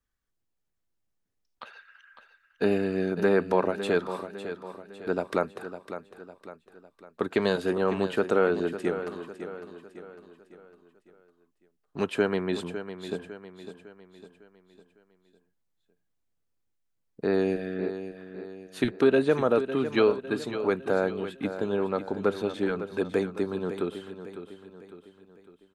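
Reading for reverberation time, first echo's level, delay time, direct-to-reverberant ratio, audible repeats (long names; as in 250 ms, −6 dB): no reverb audible, −11.0 dB, 554 ms, no reverb audible, 4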